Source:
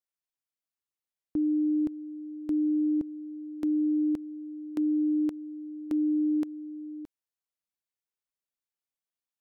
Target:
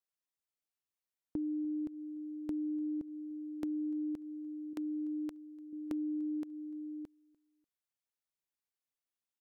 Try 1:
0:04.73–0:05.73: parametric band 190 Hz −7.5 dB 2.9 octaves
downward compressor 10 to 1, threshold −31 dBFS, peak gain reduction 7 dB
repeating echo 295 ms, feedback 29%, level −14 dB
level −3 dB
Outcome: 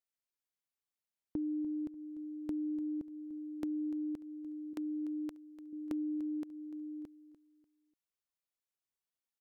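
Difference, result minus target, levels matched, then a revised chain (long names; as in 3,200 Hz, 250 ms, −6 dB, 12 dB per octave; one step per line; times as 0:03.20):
echo-to-direct +10.5 dB
0:04.73–0:05.73: parametric band 190 Hz −7.5 dB 2.9 octaves
downward compressor 10 to 1, threshold −31 dBFS, peak gain reduction 7 dB
repeating echo 295 ms, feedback 29%, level −24.5 dB
level −3 dB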